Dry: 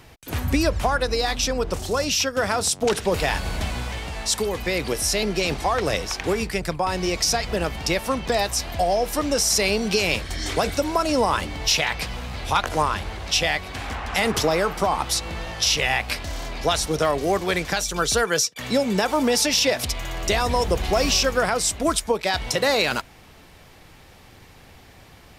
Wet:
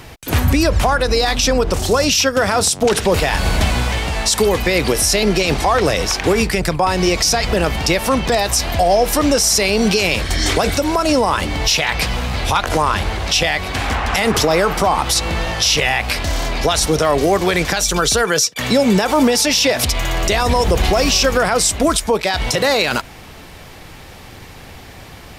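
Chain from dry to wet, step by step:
0:10.67–0:11.89: downward compressor 2 to 1, threshold −24 dBFS, peak gain reduction 5 dB
boost into a limiter +15.5 dB
level −4.5 dB

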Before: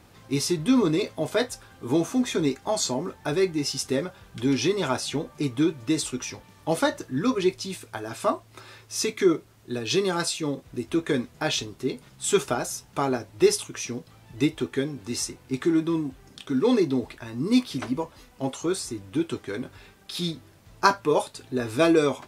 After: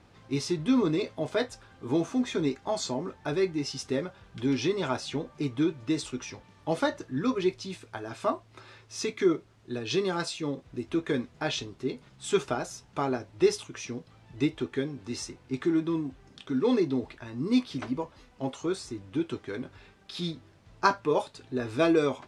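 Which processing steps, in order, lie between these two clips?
high-frequency loss of the air 76 metres
level −3.5 dB

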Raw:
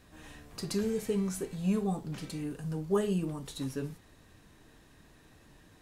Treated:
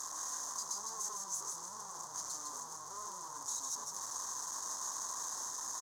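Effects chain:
sign of each sample alone
pair of resonant band-passes 2,600 Hz, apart 2.6 octaves
high-shelf EQ 2,900 Hz +10 dB
notch filter 2,200 Hz, Q 9
on a send: echo with shifted repeats 155 ms, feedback 31%, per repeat −49 Hz, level −4 dB

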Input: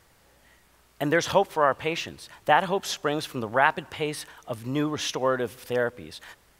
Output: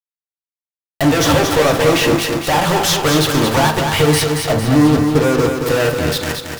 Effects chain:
0:01.17–0:02.17: parametric band 320 Hz +13.5 dB 2.1 octaves
0:04.52–0:05.66: inverse Chebyshev low-pass filter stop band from 1,400 Hz, stop band 50 dB
in parallel at +3 dB: downward compressor, threshold −30 dBFS, peak gain reduction 21 dB
on the sum: fuzz pedal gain 39 dB, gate −35 dBFS
power curve on the samples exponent 1.4
on a send at −4 dB: convolution reverb, pre-delay 3 ms
on the sum: feedback echo at a low word length 226 ms, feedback 55%, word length 6 bits, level −5 dB

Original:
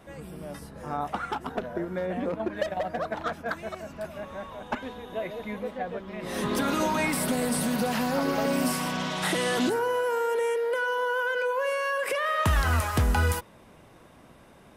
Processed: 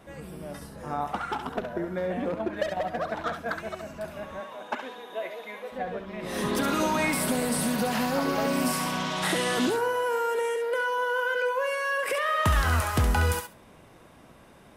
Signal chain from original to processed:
0:04.39–0:05.71: high-pass filter 250 Hz → 620 Hz 12 dB per octave
feedback echo with a high-pass in the loop 68 ms, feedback 17%, high-pass 1,000 Hz, level −5.5 dB

